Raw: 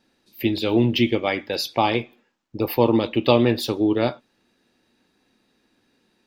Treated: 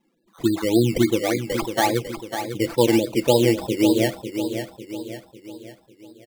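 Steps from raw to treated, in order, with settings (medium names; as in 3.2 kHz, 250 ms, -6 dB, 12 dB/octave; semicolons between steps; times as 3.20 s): loudest bins only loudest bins 16; decimation with a swept rate 14×, swing 60% 3.5 Hz; comb 6 ms, depth 35%; on a send: feedback delay 549 ms, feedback 47%, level -8.5 dB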